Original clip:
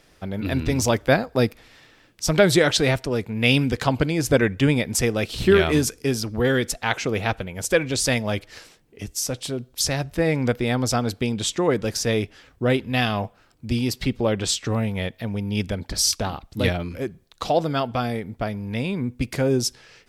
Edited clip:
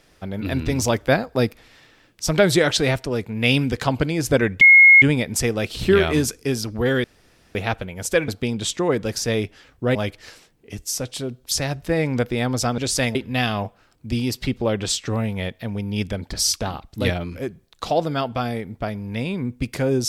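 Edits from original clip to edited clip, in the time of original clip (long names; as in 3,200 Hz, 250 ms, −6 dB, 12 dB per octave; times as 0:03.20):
0:04.61: insert tone 2,160 Hz −6 dBFS 0.41 s
0:06.63–0:07.14: fill with room tone
0:07.87–0:08.24: swap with 0:11.07–0:12.74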